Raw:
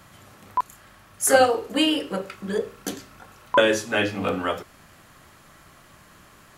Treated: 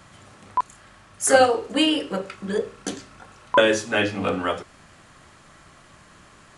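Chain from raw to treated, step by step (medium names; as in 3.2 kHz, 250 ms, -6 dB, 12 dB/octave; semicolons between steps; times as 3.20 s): resampled via 22.05 kHz; trim +1 dB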